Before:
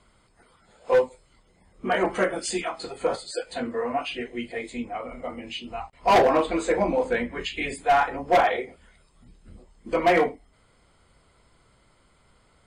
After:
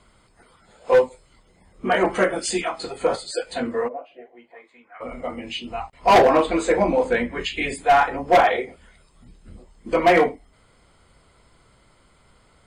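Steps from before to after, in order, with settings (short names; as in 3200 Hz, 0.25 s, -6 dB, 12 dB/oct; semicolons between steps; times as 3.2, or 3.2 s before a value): 3.87–5 band-pass 450 Hz -> 1700 Hz, Q 4.8; gain +4 dB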